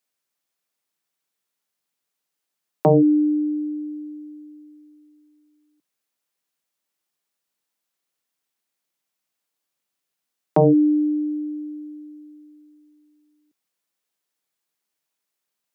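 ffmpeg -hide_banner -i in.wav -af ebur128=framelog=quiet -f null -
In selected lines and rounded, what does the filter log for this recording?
Integrated loudness:
  I:         -20.2 LUFS
  Threshold: -33.8 LUFS
Loudness range:
  LRA:        15.4 LU
  Threshold: -46.0 LUFS
  LRA low:   -38.9 LUFS
  LRA high:  -23.5 LUFS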